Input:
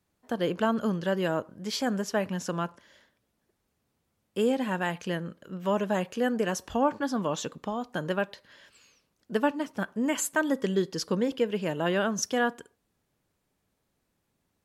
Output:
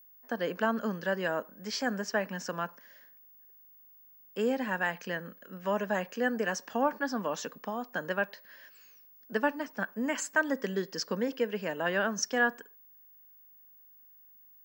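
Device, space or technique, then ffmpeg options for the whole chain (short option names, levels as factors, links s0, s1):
old television with a line whistle: -af "highpass=f=200:w=0.5412,highpass=f=200:w=1.3066,equalizer=f=340:t=q:w=4:g=-7,equalizer=f=1700:t=q:w=4:g=7,equalizer=f=3500:t=q:w=4:g=-7,equalizer=f=5300:t=q:w=4:g=4,lowpass=f=7100:w=0.5412,lowpass=f=7100:w=1.3066,aeval=exprs='val(0)+0.00251*sin(2*PI*15625*n/s)':c=same,volume=0.75"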